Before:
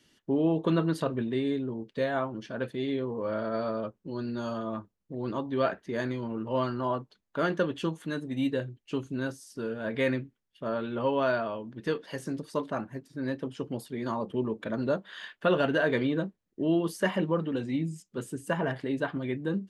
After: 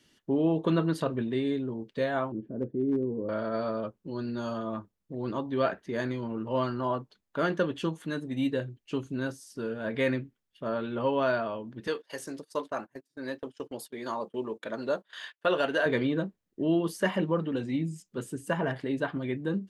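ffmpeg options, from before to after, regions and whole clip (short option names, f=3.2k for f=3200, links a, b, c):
-filter_complex "[0:a]asettb=1/sr,asplit=3[a][b][c];[a]atrim=end=2.324[d];[b]atrim=start=2.32:end=3.29,asetpts=PTS-STARTPTS,afade=t=in:d=0.004:c=qsin,afade=t=out:st=0.966:d=0.004:c=qsin,lowpass=f=350:t=q:w=1.6,asoftclip=type=hard:threshold=-21.5dB[e];[c]atrim=start=3.286[f];[d][e]acrossfade=d=0.004:c1=hsin:c2=qsin[g];[g][f]acrossfade=d=0.004:c1=qsin:c2=hsin,asettb=1/sr,asplit=3[h][i][j];[h]atrim=end=11.874[k];[i]atrim=start=11.87:end=15.86,asetpts=PTS-STARTPTS,afade=t=in:d=0.004:c=qsin,afade=t=out:st=3.986:d=0.004:c=qsin,bass=f=250:g=-14,treble=f=4k:g=5,agate=range=-22dB:threshold=-46dB:ratio=16:release=100:detection=peak[l];[j]atrim=start=15.856[m];[k][l]acrossfade=d=0.004:c1=hsin:c2=qsin[n];[n][m]acrossfade=d=0.004:c1=qsin:c2=hsin"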